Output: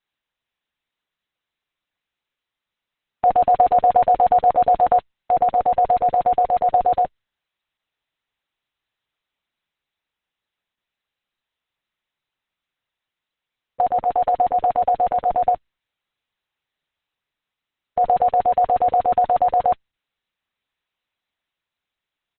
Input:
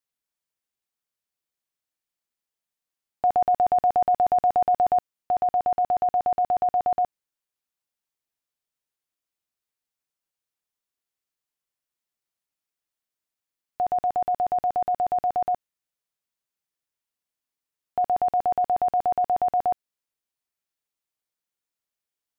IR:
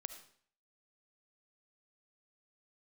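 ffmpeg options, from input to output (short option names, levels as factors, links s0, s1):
-filter_complex "[0:a]asplit=3[s0][s1][s2];[s1]asetrate=29433,aresample=44100,atempo=1.49831,volume=0.178[s3];[s2]asetrate=33038,aresample=44100,atempo=1.33484,volume=0.141[s4];[s0][s3][s4]amix=inputs=3:normalize=0,equalizer=f=340:t=o:w=1.5:g=-6,volume=2.37" -ar 48000 -c:a libopus -b:a 6k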